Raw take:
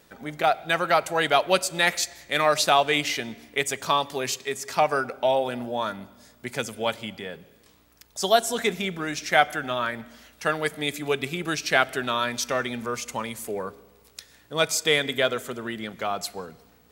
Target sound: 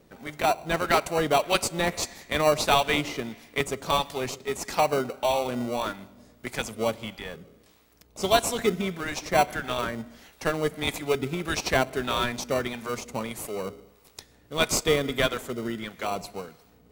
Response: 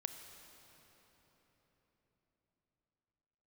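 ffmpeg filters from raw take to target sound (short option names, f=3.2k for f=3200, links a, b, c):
-filter_complex "[0:a]acrossover=split=790[a][b];[a]aeval=exprs='val(0)*(1-0.7/2+0.7/2*cos(2*PI*1.6*n/s))':c=same[c];[b]aeval=exprs='val(0)*(1-0.7/2-0.7/2*cos(2*PI*1.6*n/s))':c=same[d];[c][d]amix=inputs=2:normalize=0,asplit=2[e][f];[f]acrusher=samples=26:mix=1:aa=0.000001,volume=-4.5dB[g];[e][g]amix=inputs=2:normalize=0"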